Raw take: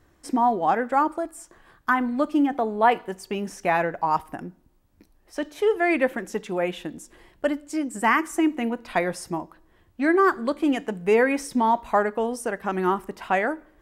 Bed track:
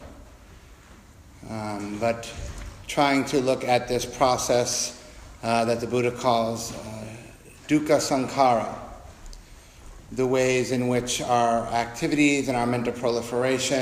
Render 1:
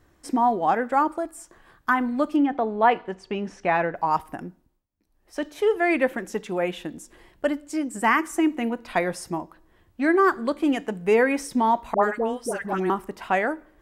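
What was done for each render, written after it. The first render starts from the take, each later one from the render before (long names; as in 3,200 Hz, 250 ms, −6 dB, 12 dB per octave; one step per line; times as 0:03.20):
0:02.36–0:03.96: low-pass filter 4,100 Hz
0:04.47–0:05.39: duck −21.5 dB, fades 0.39 s linear
0:11.94–0:12.90: all-pass dispersion highs, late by 87 ms, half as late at 910 Hz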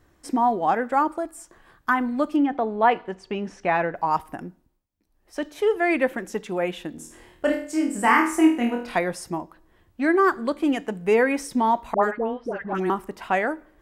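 0:06.96–0:08.96: flutter between parallel walls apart 4.3 metres, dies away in 0.44 s
0:12.11–0:12.75: high-frequency loss of the air 310 metres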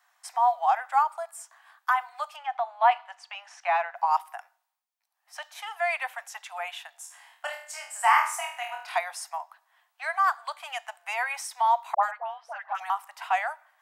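Butterworth high-pass 690 Hz 72 dB per octave
dynamic equaliser 1,700 Hz, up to −5 dB, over −39 dBFS, Q 2.2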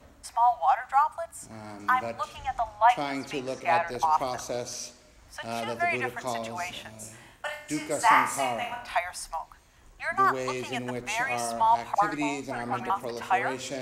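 mix in bed track −11 dB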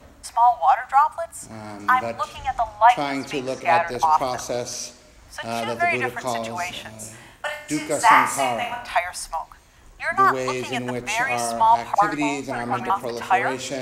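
level +6 dB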